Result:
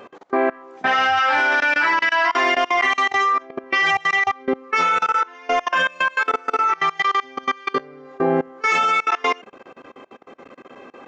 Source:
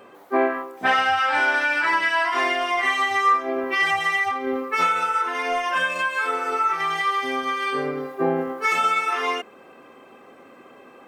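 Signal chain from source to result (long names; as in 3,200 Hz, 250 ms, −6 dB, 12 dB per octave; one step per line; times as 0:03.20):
output level in coarse steps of 24 dB
downsampling to 16,000 Hz
level +6.5 dB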